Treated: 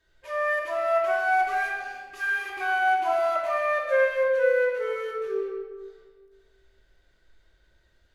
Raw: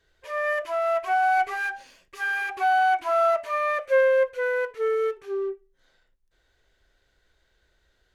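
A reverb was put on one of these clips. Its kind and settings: shoebox room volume 1400 m³, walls mixed, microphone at 2.7 m; gain -4.5 dB

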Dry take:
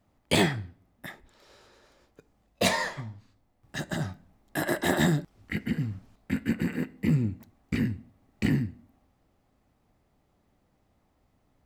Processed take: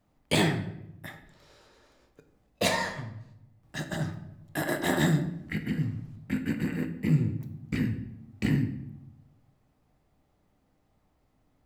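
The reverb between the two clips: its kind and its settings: shoebox room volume 230 m³, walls mixed, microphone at 0.48 m; gain -2 dB

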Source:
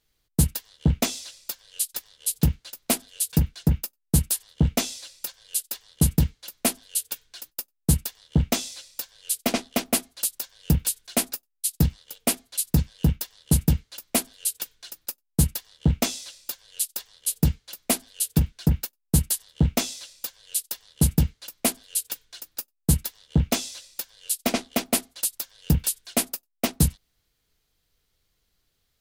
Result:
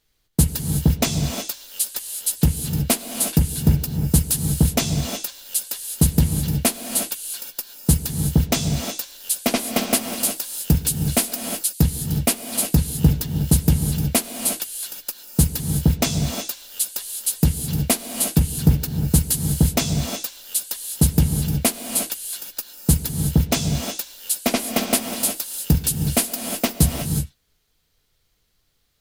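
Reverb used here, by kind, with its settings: non-linear reverb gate 0.39 s rising, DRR 5 dB; gain +3.5 dB

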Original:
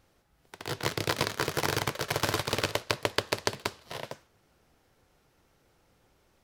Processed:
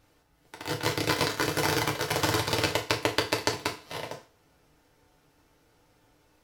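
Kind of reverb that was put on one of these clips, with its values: FDN reverb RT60 0.35 s, low-frequency decay 0.85×, high-frequency decay 0.95×, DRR 0.5 dB

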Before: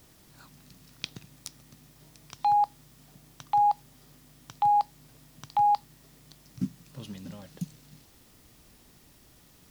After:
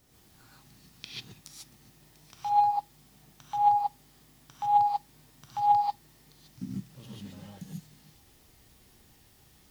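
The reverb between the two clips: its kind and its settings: non-linear reverb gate 0.17 s rising, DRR -6 dB; gain -9 dB

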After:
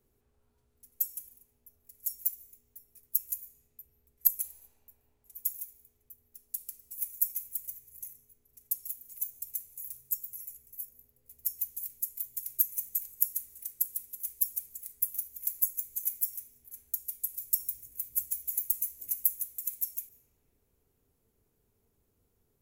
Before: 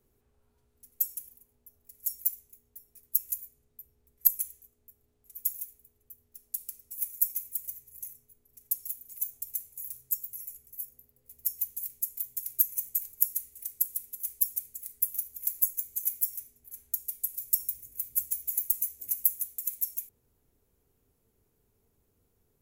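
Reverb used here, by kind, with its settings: digital reverb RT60 4.6 s, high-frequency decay 0.4×, pre-delay 0.105 s, DRR 15.5 dB; gain -2 dB

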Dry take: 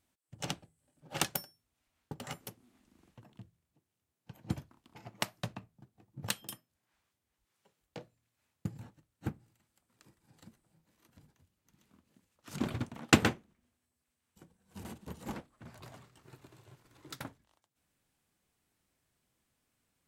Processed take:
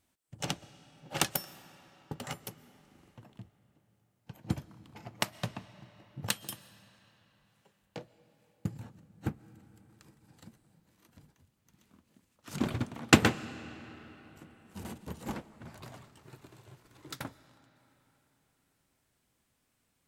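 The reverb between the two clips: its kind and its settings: digital reverb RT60 4.2 s, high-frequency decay 0.7×, pre-delay 85 ms, DRR 17 dB; gain +3 dB

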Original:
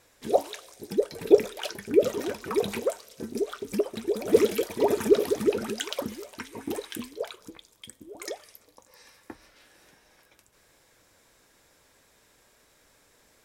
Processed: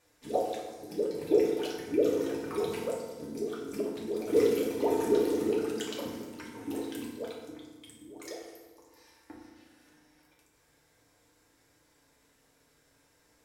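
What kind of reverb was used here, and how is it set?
FDN reverb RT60 1.3 s, low-frequency decay 1.5×, high-frequency decay 0.65×, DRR -3.5 dB; gain -10.5 dB

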